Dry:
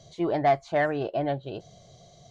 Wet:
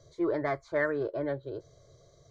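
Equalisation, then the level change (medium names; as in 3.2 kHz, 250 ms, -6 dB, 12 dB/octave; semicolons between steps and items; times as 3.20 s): treble shelf 5.6 kHz -11 dB; static phaser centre 750 Hz, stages 6; dynamic bell 2.4 kHz, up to +4 dB, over -51 dBFS, Q 1.3; 0.0 dB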